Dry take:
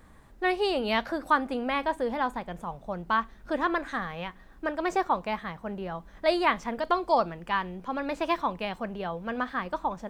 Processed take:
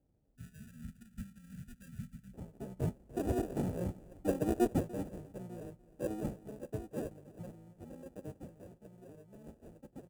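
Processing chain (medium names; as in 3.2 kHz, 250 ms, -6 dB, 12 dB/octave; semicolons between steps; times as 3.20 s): Doppler pass-by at 3.96 s, 34 m/s, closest 15 m; on a send: delay 294 ms -19.5 dB; on the sum: sample-and-hold 41×; band-stop 3.8 kHz, Q 14; harmony voices -7 st -5 dB; high-pass 44 Hz; treble shelf 5 kHz -8 dB; time-frequency box 0.35–2.34 s, 240–1300 Hz -28 dB; high-order bell 2.3 kHz -12.5 dB 2.9 oct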